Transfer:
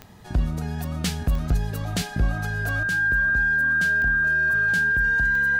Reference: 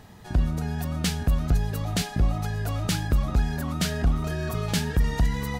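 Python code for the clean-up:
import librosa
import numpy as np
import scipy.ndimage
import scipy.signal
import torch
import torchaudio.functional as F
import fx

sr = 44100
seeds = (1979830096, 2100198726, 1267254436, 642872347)

y = fx.fix_declick_ar(x, sr, threshold=10.0)
y = fx.notch(y, sr, hz=1600.0, q=30.0)
y = fx.fix_level(y, sr, at_s=2.83, step_db=8.5)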